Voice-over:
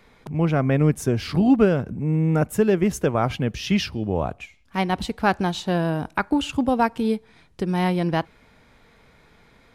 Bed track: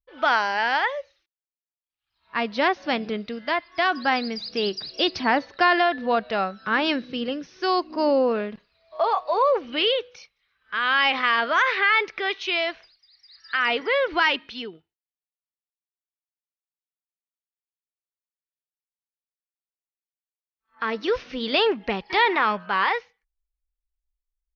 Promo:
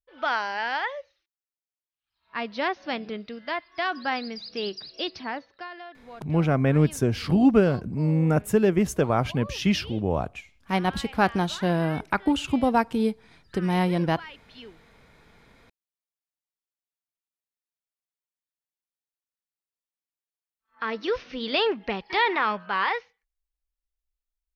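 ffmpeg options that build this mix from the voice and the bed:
ffmpeg -i stem1.wav -i stem2.wav -filter_complex "[0:a]adelay=5950,volume=-1.5dB[link_01];[1:a]volume=13.5dB,afade=type=out:start_time=4.75:duration=0.94:silence=0.149624,afade=type=in:start_time=14.4:duration=0.68:silence=0.112202[link_02];[link_01][link_02]amix=inputs=2:normalize=0" out.wav

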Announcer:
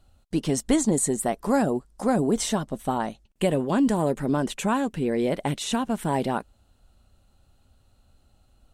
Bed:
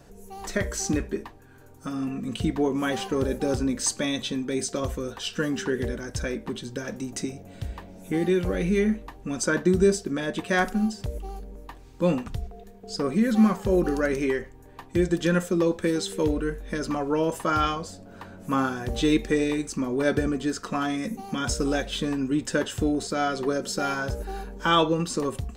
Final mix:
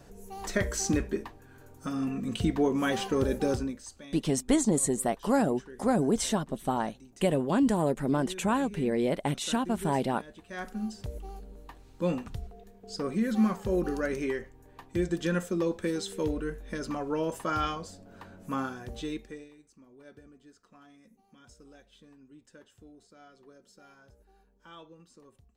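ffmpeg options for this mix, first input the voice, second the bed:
ffmpeg -i stem1.wav -i stem2.wav -filter_complex "[0:a]adelay=3800,volume=-3dB[link_01];[1:a]volume=13dB,afade=type=out:start_time=3.46:duration=0.36:silence=0.112202,afade=type=in:start_time=10.48:duration=0.59:silence=0.188365,afade=type=out:start_time=18.34:duration=1.16:silence=0.0707946[link_02];[link_01][link_02]amix=inputs=2:normalize=0" out.wav

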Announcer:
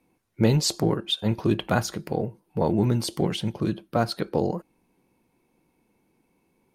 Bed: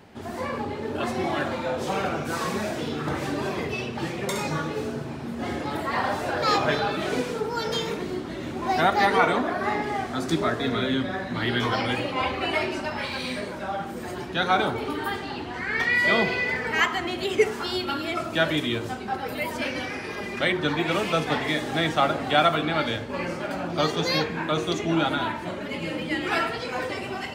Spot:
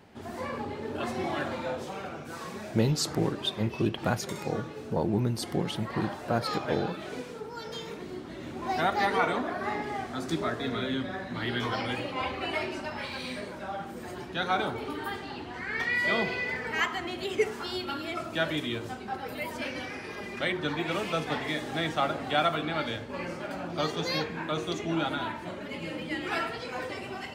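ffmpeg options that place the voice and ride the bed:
ffmpeg -i stem1.wav -i stem2.wav -filter_complex "[0:a]adelay=2350,volume=-5dB[link_01];[1:a]volume=0.5dB,afade=type=out:start_time=1.71:duration=0.2:silence=0.473151,afade=type=in:start_time=7.74:duration=0.92:silence=0.530884[link_02];[link_01][link_02]amix=inputs=2:normalize=0" out.wav

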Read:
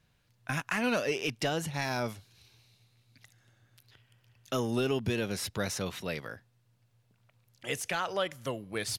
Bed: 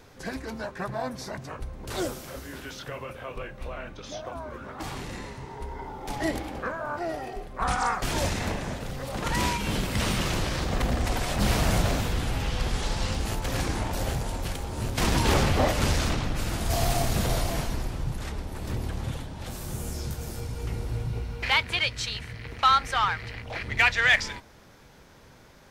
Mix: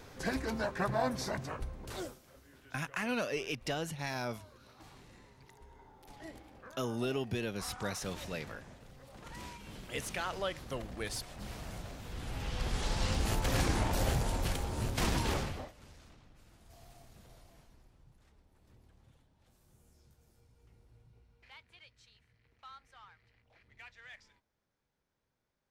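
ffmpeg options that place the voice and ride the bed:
ffmpeg -i stem1.wav -i stem2.wav -filter_complex "[0:a]adelay=2250,volume=-5dB[link_01];[1:a]volume=18.5dB,afade=type=out:start_time=1.27:duration=0.92:silence=0.0944061,afade=type=in:start_time=11.99:duration=1.37:silence=0.11885,afade=type=out:start_time=14.54:duration=1.17:silence=0.0316228[link_02];[link_01][link_02]amix=inputs=2:normalize=0" out.wav

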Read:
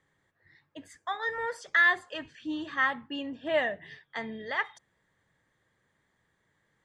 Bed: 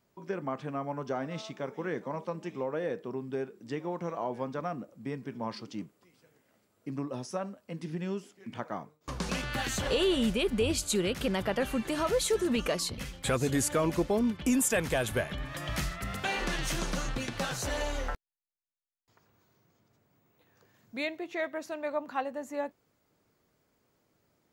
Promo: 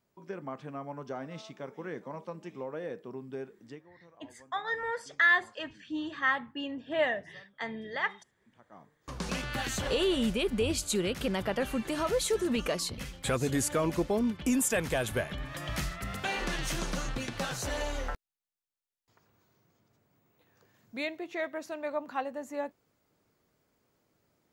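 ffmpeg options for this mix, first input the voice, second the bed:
ffmpeg -i stem1.wav -i stem2.wav -filter_complex "[0:a]adelay=3450,volume=-1dB[link_01];[1:a]volume=17dB,afade=type=out:start_time=3.61:duration=0.24:silence=0.125893,afade=type=in:start_time=8.68:duration=0.6:silence=0.0794328[link_02];[link_01][link_02]amix=inputs=2:normalize=0" out.wav

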